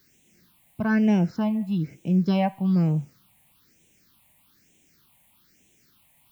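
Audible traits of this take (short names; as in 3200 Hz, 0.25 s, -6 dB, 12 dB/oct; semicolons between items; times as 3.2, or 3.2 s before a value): a quantiser's noise floor 10-bit, dither triangular; phasing stages 6, 1.1 Hz, lowest notch 360–1300 Hz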